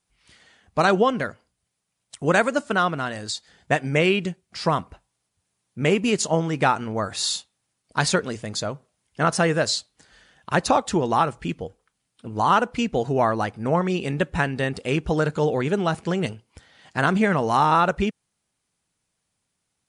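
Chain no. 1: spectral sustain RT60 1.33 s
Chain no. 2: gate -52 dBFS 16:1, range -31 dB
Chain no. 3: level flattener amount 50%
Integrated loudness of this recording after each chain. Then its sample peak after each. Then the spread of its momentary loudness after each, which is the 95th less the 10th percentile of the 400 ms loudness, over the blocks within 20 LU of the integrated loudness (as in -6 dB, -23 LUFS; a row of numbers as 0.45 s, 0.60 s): -19.0 LUFS, -23.0 LUFS, -20.0 LUFS; -2.0 dBFS, -5.5 dBFS, -3.5 dBFS; 14 LU, 10 LU, 14 LU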